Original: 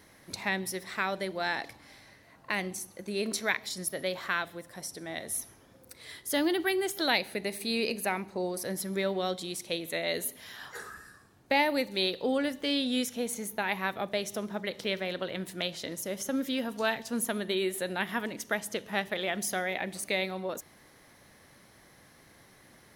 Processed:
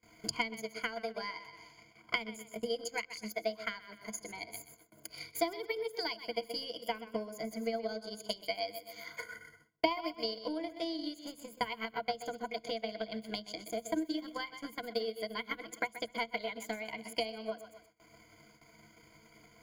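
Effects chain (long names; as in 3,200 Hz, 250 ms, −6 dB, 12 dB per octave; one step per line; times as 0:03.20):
speed change +17%
parametric band 13,000 Hz −7 dB 1 octave
feedback echo with a high-pass in the loop 125 ms, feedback 40%, high-pass 180 Hz, level −9 dB
downward compressor 2 to 1, threshold −41 dBFS, peak gain reduction 11 dB
transient designer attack +11 dB, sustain −10 dB
EQ curve with evenly spaced ripples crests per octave 1.8, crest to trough 18 dB
noise gate with hold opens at −43 dBFS
level −7 dB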